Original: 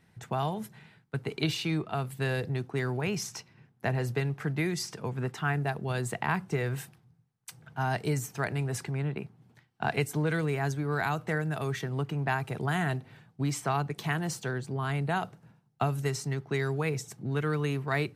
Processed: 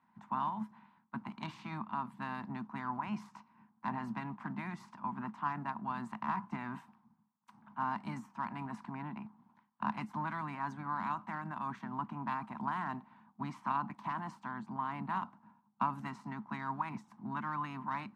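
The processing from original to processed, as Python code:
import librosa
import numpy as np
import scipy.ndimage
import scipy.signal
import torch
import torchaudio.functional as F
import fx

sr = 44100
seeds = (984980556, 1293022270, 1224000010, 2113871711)

y = fx.spec_clip(x, sr, under_db=16)
y = fx.cheby_harmonics(y, sr, harmonics=(2, 8), levels_db=(-8, -22), full_scale_db=-11.5)
y = fx.double_bandpass(y, sr, hz=460.0, octaves=2.2)
y = y * 10.0 ** (4.0 / 20.0)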